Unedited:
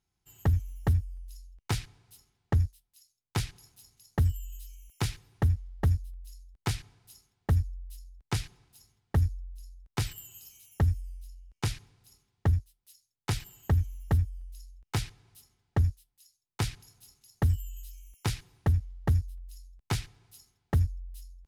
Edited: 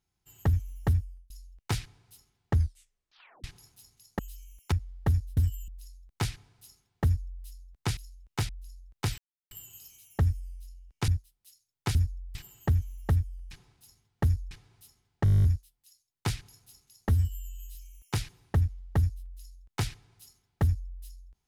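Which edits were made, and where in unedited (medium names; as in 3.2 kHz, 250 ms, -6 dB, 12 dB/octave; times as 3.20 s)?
1.00–1.30 s: fade out
2.55 s: tape stop 0.89 s
4.19–4.50 s: move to 6.14 s
5.03–5.49 s: delete
7.51–7.91 s: copy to 13.37 s
8.43–9.43 s: swap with 14.53–15.05 s
10.12 s: insert silence 0.33 s
11.69–12.50 s: delete
15.78 s: stutter 0.02 s, 11 plays
17.43–17.87 s: stretch 1.5×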